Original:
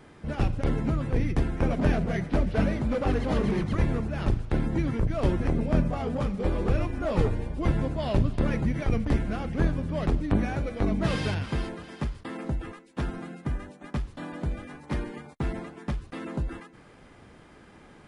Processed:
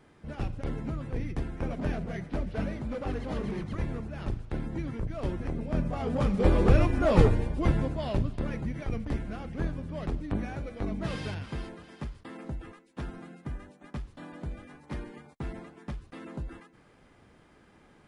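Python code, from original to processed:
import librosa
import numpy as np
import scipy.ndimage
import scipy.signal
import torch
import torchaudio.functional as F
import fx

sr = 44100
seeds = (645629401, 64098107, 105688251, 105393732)

y = fx.gain(x, sr, db=fx.line((5.65, -7.5), (6.42, 4.5), (7.19, 4.5), (8.45, -7.0)))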